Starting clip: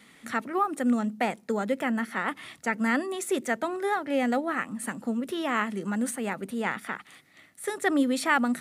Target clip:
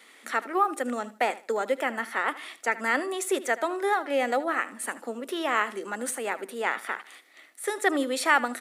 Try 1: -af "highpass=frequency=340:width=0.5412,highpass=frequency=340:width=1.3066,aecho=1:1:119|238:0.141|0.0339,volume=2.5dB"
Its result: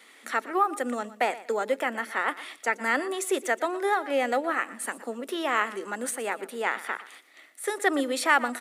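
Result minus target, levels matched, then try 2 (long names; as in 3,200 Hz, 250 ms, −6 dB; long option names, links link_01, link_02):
echo 42 ms late
-af "highpass=frequency=340:width=0.5412,highpass=frequency=340:width=1.3066,aecho=1:1:77|154:0.141|0.0339,volume=2.5dB"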